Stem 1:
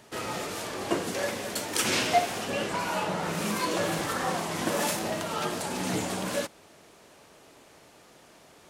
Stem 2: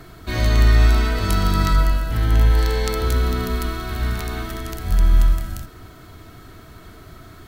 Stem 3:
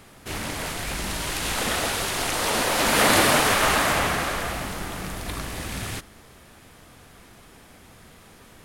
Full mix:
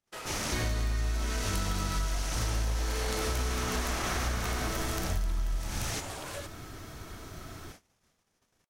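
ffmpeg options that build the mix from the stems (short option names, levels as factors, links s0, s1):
-filter_complex "[0:a]highpass=540,acompressor=threshold=0.0224:ratio=6,volume=0.596[s0];[1:a]adelay=250,volume=0.708[s1];[2:a]equalizer=f=5900:t=o:w=0.56:g=11,alimiter=limit=0.178:level=0:latency=1:release=13,volume=0.596[s2];[s0][s1][s2]amix=inputs=3:normalize=0,agate=range=0.0141:threshold=0.00398:ratio=16:detection=peak,acompressor=threshold=0.0447:ratio=12"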